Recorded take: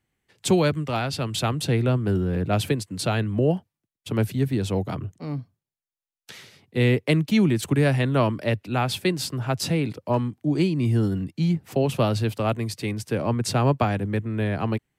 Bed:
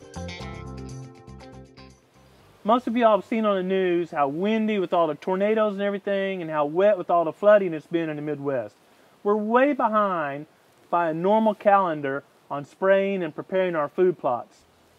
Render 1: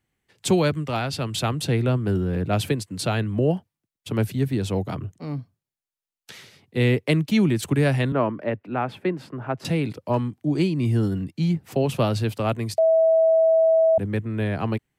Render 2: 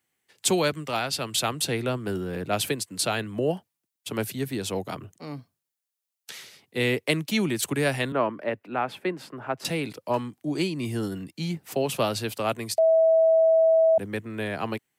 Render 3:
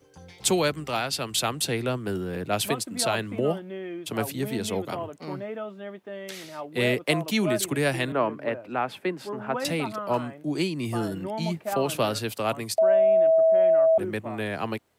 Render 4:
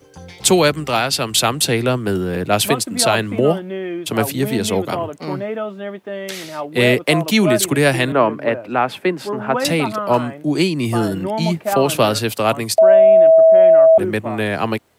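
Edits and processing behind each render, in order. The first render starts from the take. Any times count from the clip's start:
8.12–9.65 three-band isolator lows -13 dB, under 160 Hz, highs -24 dB, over 2200 Hz; 12.78–13.98 bleep 649 Hz -14 dBFS
HPF 420 Hz 6 dB/oct; high shelf 5600 Hz +8 dB
add bed -13 dB
gain +10 dB; limiter -1 dBFS, peak gain reduction 3 dB

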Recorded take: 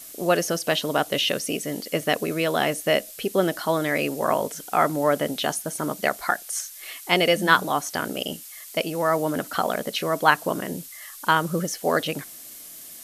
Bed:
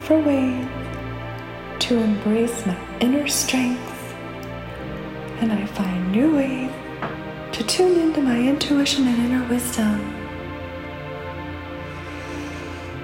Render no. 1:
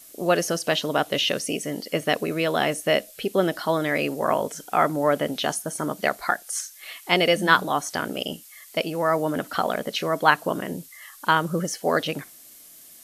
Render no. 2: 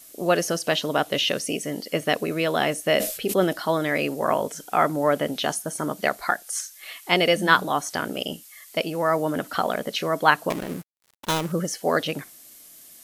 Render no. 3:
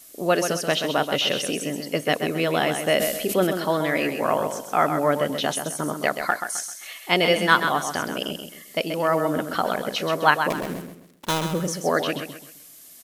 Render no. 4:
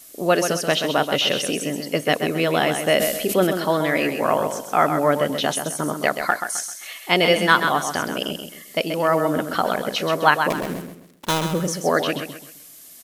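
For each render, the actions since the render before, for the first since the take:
noise print and reduce 6 dB
2.94–3.53 sustainer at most 82 dB/s; 10.5–11.52 switching dead time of 0.28 ms
feedback echo 0.131 s, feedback 34%, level -7.5 dB
gain +2.5 dB; limiter -2 dBFS, peak gain reduction 2 dB

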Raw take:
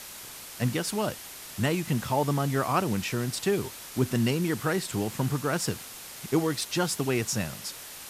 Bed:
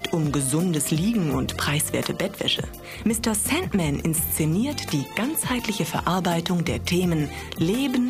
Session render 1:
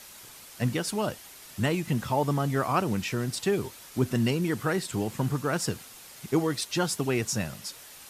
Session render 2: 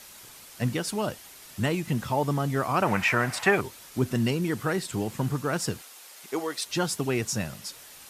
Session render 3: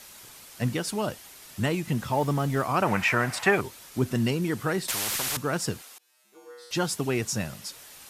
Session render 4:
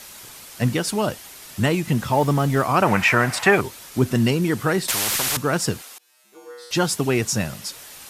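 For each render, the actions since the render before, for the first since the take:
denoiser 6 dB, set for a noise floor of -43 dBFS
2.82–3.61 band shelf 1200 Hz +15 dB 2.4 oct; 5.81–6.66 HPF 450 Hz
2.13–2.62 zero-crossing step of -40.5 dBFS; 4.88–5.37 spectral compressor 10:1; 5.98–6.71 resonator 69 Hz, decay 1.2 s, harmonics odd, mix 100%
gain +6.5 dB; limiter -3 dBFS, peak gain reduction 1.5 dB

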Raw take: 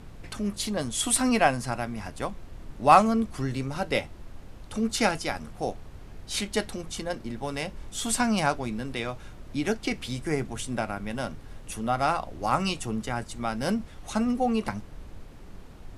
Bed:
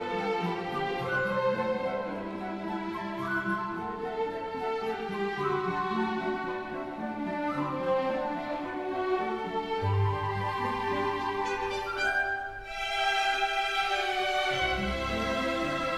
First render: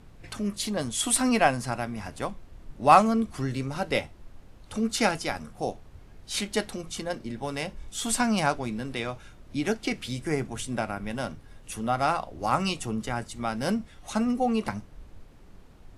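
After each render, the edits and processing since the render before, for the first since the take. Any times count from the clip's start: noise print and reduce 6 dB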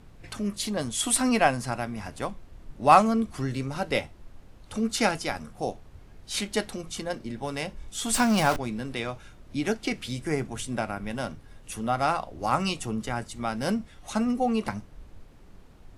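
8.14–8.58 zero-crossing step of -26.5 dBFS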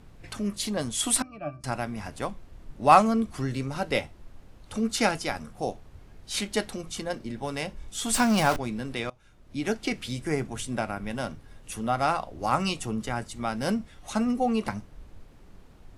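1.22–1.64 octave resonator D, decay 0.14 s; 9.1–9.76 fade in, from -23 dB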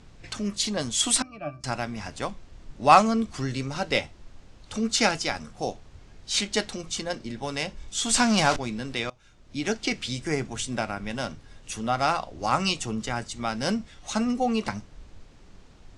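LPF 7500 Hz 24 dB/oct; high shelf 2900 Hz +9 dB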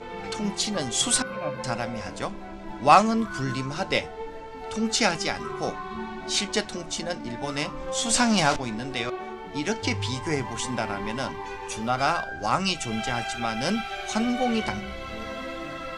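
add bed -5 dB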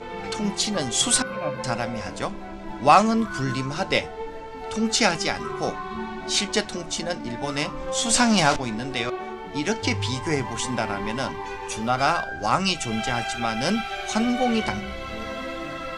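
gain +2.5 dB; limiter -3 dBFS, peak gain reduction 3 dB

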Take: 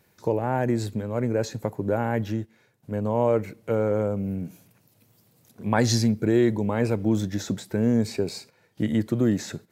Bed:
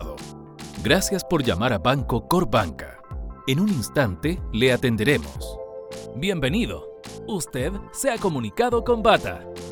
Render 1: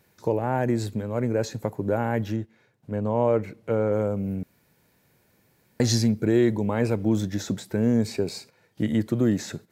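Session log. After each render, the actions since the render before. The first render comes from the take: 2.36–3.92 high shelf 6600 Hz -10 dB; 4.43–5.8 room tone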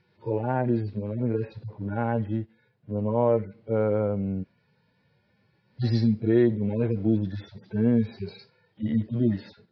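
median-filter separation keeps harmonic; steep low-pass 5100 Hz 72 dB/oct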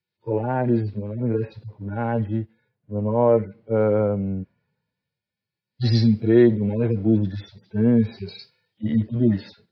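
in parallel at -2.5 dB: limiter -18.5 dBFS, peak gain reduction 8 dB; on the sum: three-band expander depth 70%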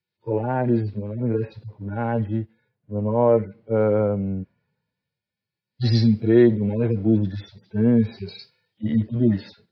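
nothing audible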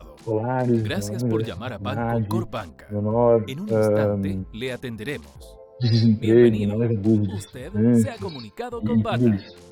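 add bed -10.5 dB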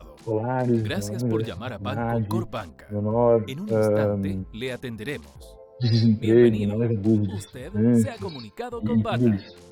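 gain -1.5 dB

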